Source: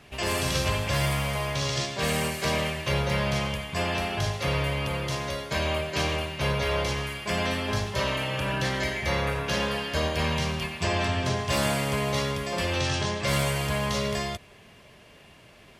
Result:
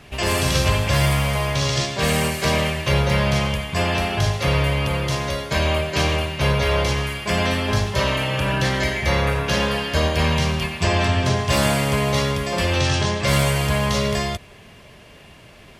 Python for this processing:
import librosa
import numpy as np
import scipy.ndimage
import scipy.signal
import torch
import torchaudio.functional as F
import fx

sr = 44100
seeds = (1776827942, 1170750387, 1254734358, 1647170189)

y = fx.low_shelf(x, sr, hz=110.0, db=5.0)
y = y * librosa.db_to_amplitude(6.0)